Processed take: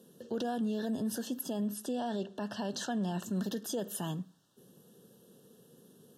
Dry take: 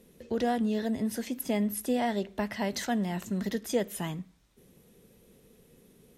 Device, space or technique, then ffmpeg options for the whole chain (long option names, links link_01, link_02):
PA system with an anti-feedback notch: -filter_complex "[0:a]highpass=frequency=120:width=0.5412,highpass=frequency=120:width=1.3066,asuperstop=centerf=2200:order=20:qfactor=2.5,alimiter=level_in=2.5dB:limit=-24dB:level=0:latency=1:release=44,volume=-2.5dB,asettb=1/sr,asplit=3[link_01][link_02][link_03];[link_01]atrim=end=1.684[link_04];[link_02]atrim=start=1.68:end=3.23,asetpts=PTS-STARTPTS,afade=type=in:duration=0.004:curve=qsin,afade=type=out:start_time=1.546:duration=0.004:curve=qsin,lowpass=8600[link_05];[link_03]atrim=start=3.226[link_06];[link_04][link_05]acrossfade=duration=0.004:curve1=hsin:curve2=qsin[link_07];[link_07][link_06]acrossfade=duration=0.004:curve1=qsin:curve2=hsin"